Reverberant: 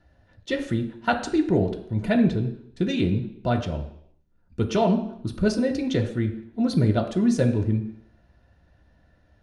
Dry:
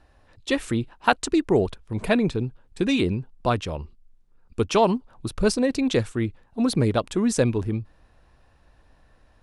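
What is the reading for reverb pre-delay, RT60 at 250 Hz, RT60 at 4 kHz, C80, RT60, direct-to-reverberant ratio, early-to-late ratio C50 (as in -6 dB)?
3 ms, 0.65 s, 0.70 s, 12.5 dB, 0.70 s, 2.0 dB, 10.0 dB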